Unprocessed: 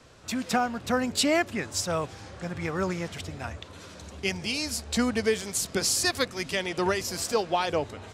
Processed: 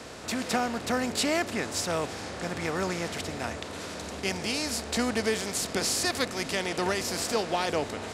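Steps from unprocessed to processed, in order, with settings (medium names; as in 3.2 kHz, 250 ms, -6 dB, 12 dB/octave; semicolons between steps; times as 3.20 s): spectral levelling over time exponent 0.6; trim -5 dB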